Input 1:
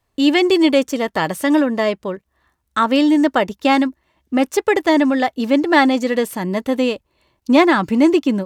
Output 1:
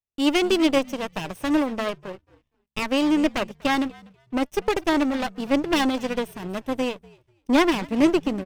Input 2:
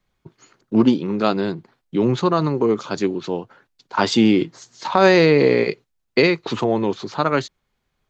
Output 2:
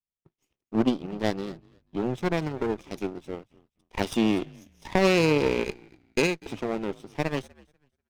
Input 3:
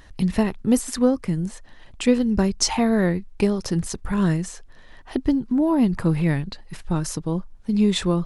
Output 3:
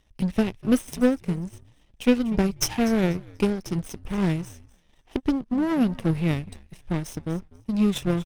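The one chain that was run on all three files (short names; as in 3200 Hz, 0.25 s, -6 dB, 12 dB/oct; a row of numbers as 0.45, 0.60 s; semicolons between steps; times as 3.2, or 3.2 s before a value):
minimum comb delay 0.33 ms; frequency-shifting echo 0.244 s, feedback 32%, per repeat -72 Hz, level -17.5 dB; power-law curve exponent 1.4; normalise peaks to -6 dBFS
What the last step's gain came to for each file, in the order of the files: -3.0, -4.5, +0.5 dB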